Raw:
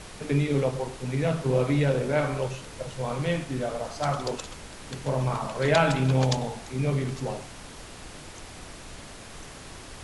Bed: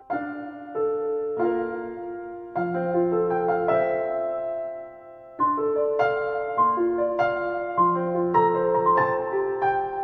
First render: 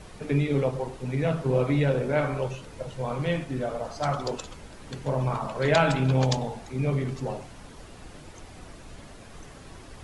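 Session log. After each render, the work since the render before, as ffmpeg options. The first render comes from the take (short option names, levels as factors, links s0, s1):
-af "afftdn=nr=8:nf=-44"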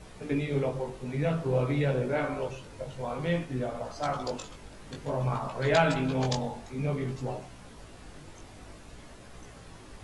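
-af "flanger=delay=16:depth=5:speed=0.54"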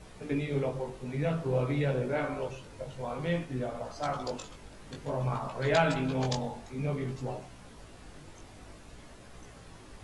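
-af "volume=0.794"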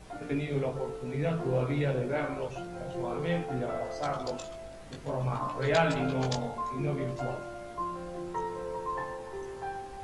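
-filter_complex "[1:a]volume=0.178[s0];[0:a][s0]amix=inputs=2:normalize=0"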